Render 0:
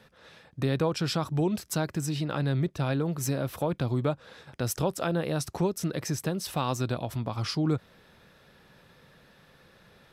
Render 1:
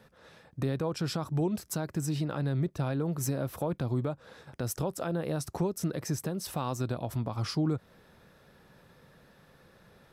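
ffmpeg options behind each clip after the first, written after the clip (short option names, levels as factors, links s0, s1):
-af "equalizer=f=3100:w=0.74:g=-6,alimiter=limit=0.0891:level=0:latency=1:release=186"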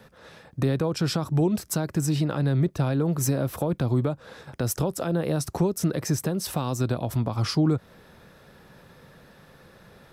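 -filter_complex "[0:a]acrossover=split=490|3000[s0][s1][s2];[s1]acompressor=threshold=0.0141:ratio=6[s3];[s0][s3][s2]amix=inputs=3:normalize=0,volume=2.24"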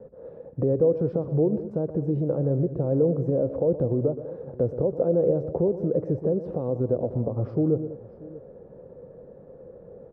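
-filter_complex "[0:a]alimiter=limit=0.106:level=0:latency=1:release=235,lowpass=f=500:t=q:w=4.9,asplit=2[s0][s1];[s1]aecho=0:1:121|198|634:0.224|0.158|0.1[s2];[s0][s2]amix=inputs=2:normalize=0"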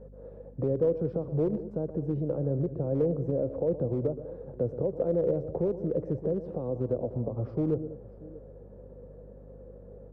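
-filter_complex "[0:a]acrossover=split=170|390[s0][s1][s2];[s1]aeval=exprs='clip(val(0),-1,0.0501)':c=same[s3];[s0][s3][s2]amix=inputs=3:normalize=0,aeval=exprs='val(0)+0.00631*(sin(2*PI*50*n/s)+sin(2*PI*2*50*n/s)/2+sin(2*PI*3*50*n/s)/3+sin(2*PI*4*50*n/s)/4+sin(2*PI*5*50*n/s)/5)':c=same,volume=0.562"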